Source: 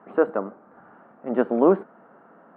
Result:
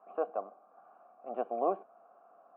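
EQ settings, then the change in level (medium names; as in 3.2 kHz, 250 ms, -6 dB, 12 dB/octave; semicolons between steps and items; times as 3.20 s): dynamic bell 1.3 kHz, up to -6 dB, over -42 dBFS, Q 3.6; vowel filter a; 0.0 dB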